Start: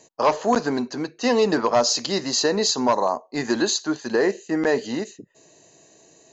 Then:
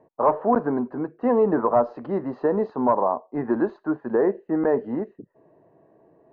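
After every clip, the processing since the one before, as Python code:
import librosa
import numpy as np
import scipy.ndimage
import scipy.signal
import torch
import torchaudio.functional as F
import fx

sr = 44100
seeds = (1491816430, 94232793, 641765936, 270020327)

y = scipy.signal.sosfilt(scipy.signal.butter(4, 1300.0, 'lowpass', fs=sr, output='sos'), x)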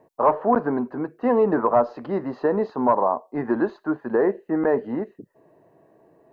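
y = fx.high_shelf(x, sr, hz=2300.0, db=11.0)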